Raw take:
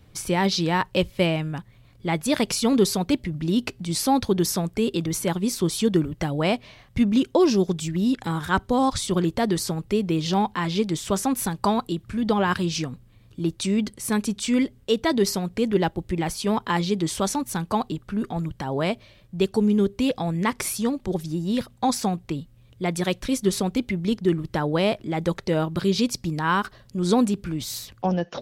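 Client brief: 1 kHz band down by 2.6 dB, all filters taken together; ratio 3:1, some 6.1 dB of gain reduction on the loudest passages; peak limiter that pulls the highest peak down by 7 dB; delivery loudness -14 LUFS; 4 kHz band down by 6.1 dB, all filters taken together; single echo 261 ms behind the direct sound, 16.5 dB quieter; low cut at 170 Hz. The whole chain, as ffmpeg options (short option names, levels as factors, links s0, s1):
-af "highpass=170,equalizer=f=1000:t=o:g=-3,equalizer=f=4000:t=o:g=-8,acompressor=threshold=0.0631:ratio=3,alimiter=limit=0.1:level=0:latency=1,aecho=1:1:261:0.15,volume=6.68"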